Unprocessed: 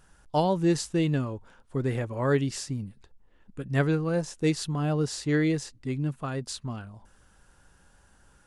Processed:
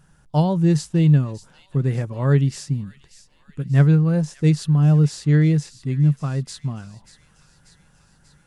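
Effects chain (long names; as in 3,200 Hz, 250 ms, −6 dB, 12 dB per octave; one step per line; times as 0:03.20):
parametric band 150 Hz +14.5 dB 0.68 octaves
delay with a high-pass on its return 588 ms, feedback 62%, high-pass 2,400 Hz, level −14 dB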